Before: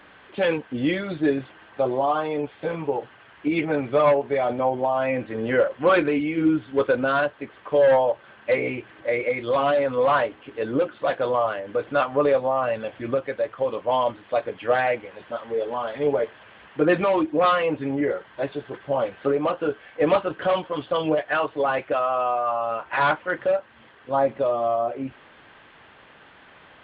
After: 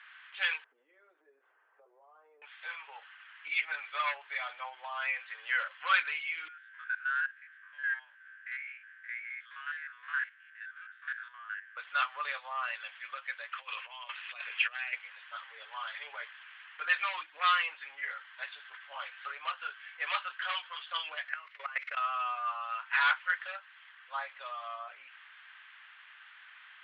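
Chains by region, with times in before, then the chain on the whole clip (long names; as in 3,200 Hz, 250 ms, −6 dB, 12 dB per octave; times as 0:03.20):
0:00.64–0:02.42: mu-law and A-law mismatch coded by mu + downward compressor 16 to 1, threshold −29 dBFS + low-pass with resonance 420 Hz, resonance Q 4.1
0:06.48–0:11.77: spectrum averaged block by block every 50 ms + four-pole ladder band-pass 1,700 Hz, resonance 80%
0:13.52–0:14.93: parametric band 2,600 Hz +10.5 dB 0.28 octaves + compressor whose output falls as the input rises −30 dBFS
0:21.28–0:21.97: spike at every zero crossing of −26 dBFS + loudspeaker in its box 220–2,800 Hz, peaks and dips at 230 Hz −5 dB, 370 Hz +6 dB, 540 Hz +6 dB, 810 Hz −4 dB, 1,200 Hz +3 dB, 2,100 Hz +9 dB + output level in coarse steps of 19 dB
whole clip: high-pass filter 1,400 Hz 24 dB per octave; low-pass that shuts in the quiet parts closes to 3,000 Hz, open at −28.5 dBFS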